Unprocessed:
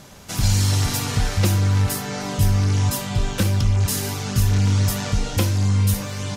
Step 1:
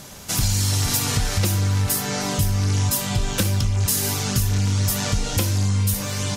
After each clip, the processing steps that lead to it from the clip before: high shelf 4800 Hz +8 dB; compressor, threshold -19 dBFS, peak gain reduction 7 dB; gain +2 dB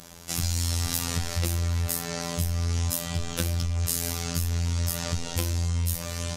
robotiser 84.9 Hz; gain -4.5 dB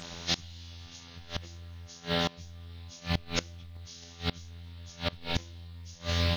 nonlinear frequency compression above 1400 Hz 1.5:1; modulation noise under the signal 31 dB; flipped gate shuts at -19 dBFS, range -24 dB; gain +4.5 dB

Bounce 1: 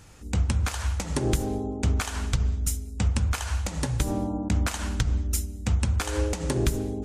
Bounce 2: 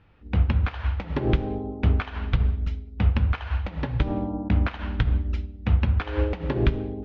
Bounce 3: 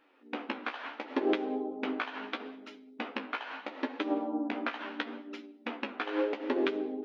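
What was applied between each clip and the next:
inverse Chebyshev low-pass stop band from 7600 Hz, stop band 50 dB; de-hum 128.5 Hz, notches 39; upward expander 1.5:1, over -42 dBFS; gain +4.5 dB
flange 0.74 Hz, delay 9.4 ms, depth 7.5 ms, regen +31%; brick-wall FIR high-pass 230 Hz; gain +2 dB

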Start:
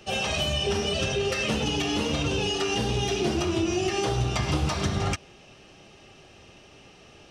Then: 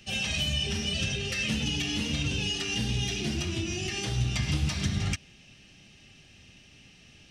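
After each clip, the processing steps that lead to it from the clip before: band shelf 680 Hz -12.5 dB 2.3 oct; gain -1 dB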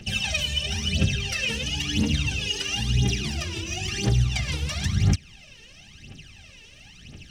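in parallel at +1 dB: compressor, threshold -36 dBFS, peak gain reduction 13 dB; on the sum: phaser 0.98 Hz, delay 2.3 ms, feedback 76%; gain -3.5 dB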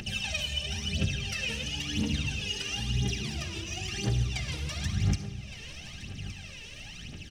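upward compressor, threshold -27 dBFS; echo 1.167 s -14.5 dB; on a send at -10 dB: reverb RT60 1.3 s, pre-delay 15 ms; on the sum: gain -6.5 dB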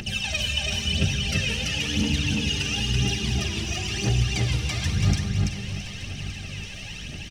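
feedback echo 0.334 s, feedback 31%, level -3 dB; gain +5 dB

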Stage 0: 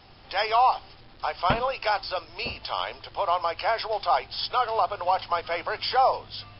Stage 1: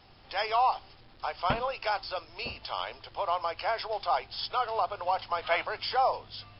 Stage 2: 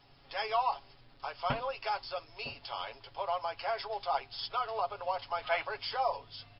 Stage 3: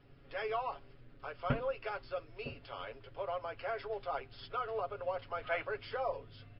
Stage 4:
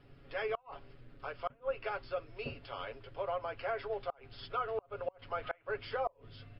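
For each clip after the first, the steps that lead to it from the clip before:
spectral gain 5.42–5.65, 560–4300 Hz +8 dB; gain -5 dB
comb 7.2 ms, depth 67%; gain -6 dB
EQ curve 500 Hz 0 dB, 860 Hz -16 dB, 1400 Hz -5 dB, 2700 Hz -10 dB, 4900 Hz -21 dB; gain +4 dB
treble ducked by the level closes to 3000 Hz, closed at -33 dBFS; flipped gate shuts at -26 dBFS, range -31 dB; gain +2 dB

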